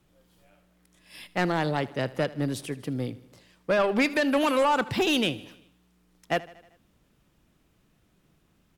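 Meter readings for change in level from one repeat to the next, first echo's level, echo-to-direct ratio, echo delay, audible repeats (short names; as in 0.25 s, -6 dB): -4.5 dB, -19.5 dB, -17.5 dB, 78 ms, 4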